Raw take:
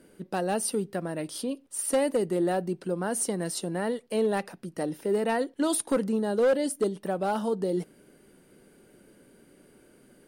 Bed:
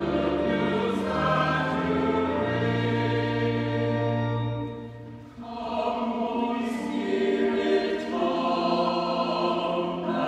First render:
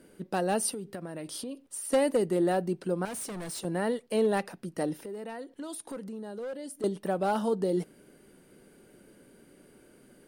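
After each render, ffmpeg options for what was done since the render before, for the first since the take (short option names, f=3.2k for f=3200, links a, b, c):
-filter_complex "[0:a]asettb=1/sr,asplit=3[a][b][c];[a]atrim=end=0.734[d];[b]atrim=start=0.73:end=1.92,asetpts=PTS-STARTPTS,afade=t=in:d=0.004:c=qsin,afade=t=out:st=1.186:d=0.004:c=qsin,acompressor=threshold=-34dB:ratio=6:attack=3.2:release=140:knee=1:detection=peak[e];[c]atrim=start=1.916[f];[d][e]acrossfade=d=0.004:c1=hsin:c2=qsin[g];[g][f]acrossfade=d=0.004:c1=qsin:c2=hsin,asettb=1/sr,asplit=3[h][i][j];[h]atrim=end=3.054[k];[i]atrim=start=3.05:end=3.65,asetpts=PTS-STARTPTS,afade=t=in:d=0.004:c=qsin,afade=t=out:st=0.596:d=0.004:c=qsin,asoftclip=type=hard:threshold=-36dB[l];[j]atrim=start=3.646[m];[k][l]acrossfade=d=0.004:c1=hsin:c2=qsin[n];[n][m]acrossfade=d=0.004:c1=qsin:c2=hsin,asettb=1/sr,asplit=3[o][p][q];[o]atrim=end=4.934[r];[p]atrim=start=4.93:end=6.84,asetpts=PTS-STARTPTS,afade=t=in:d=0.004:c=qsin,afade=t=out:st=1.906:d=0.004:c=qsin,acompressor=threshold=-41dB:ratio=3:attack=3.2:release=140:knee=1:detection=peak[s];[q]atrim=start=6.836[t];[r][s]acrossfade=d=0.004:c1=hsin:c2=qsin[u];[u][t]acrossfade=d=0.004:c1=qsin:c2=hsin"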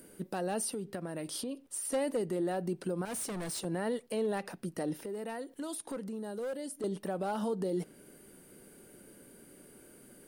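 -filter_complex "[0:a]acrossover=split=8000[a][b];[b]acompressor=mode=upward:threshold=-51dB:ratio=2.5[c];[a][c]amix=inputs=2:normalize=0,alimiter=level_in=1.5dB:limit=-24dB:level=0:latency=1:release=71,volume=-1.5dB"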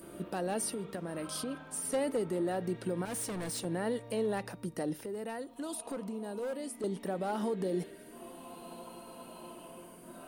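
-filter_complex "[1:a]volume=-24dB[a];[0:a][a]amix=inputs=2:normalize=0"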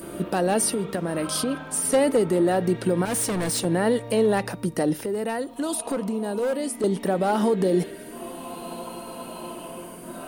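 -af "volume=12dB"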